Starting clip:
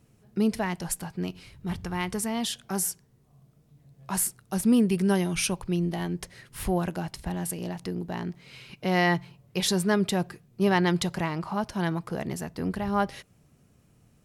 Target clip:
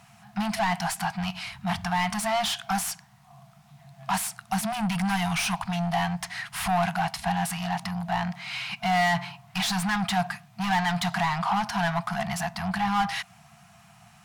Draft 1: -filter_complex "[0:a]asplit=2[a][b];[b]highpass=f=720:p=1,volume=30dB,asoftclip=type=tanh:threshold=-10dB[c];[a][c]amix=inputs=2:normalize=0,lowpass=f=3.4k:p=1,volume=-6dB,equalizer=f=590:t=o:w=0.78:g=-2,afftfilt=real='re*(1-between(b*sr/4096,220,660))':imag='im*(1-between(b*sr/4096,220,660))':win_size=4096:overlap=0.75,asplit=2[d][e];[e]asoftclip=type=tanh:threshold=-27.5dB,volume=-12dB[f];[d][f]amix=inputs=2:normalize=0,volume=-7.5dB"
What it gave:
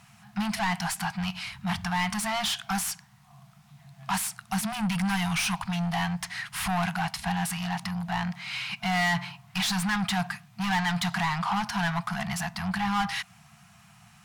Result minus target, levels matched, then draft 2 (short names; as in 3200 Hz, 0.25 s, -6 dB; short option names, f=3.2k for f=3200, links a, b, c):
500 Hz band -5.5 dB
-filter_complex "[0:a]asplit=2[a][b];[b]highpass=f=720:p=1,volume=30dB,asoftclip=type=tanh:threshold=-10dB[c];[a][c]amix=inputs=2:normalize=0,lowpass=f=3.4k:p=1,volume=-6dB,equalizer=f=590:t=o:w=0.78:g=8,afftfilt=real='re*(1-between(b*sr/4096,220,660))':imag='im*(1-between(b*sr/4096,220,660))':win_size=4096:overlap=0.75,asplit=2[d][e];[e]asoftclip=type=tanh:threshold=-27.5dB,volume=-12dB[f];[d][f]amix=inputs=2:normalize=0,volume=-7.5dB"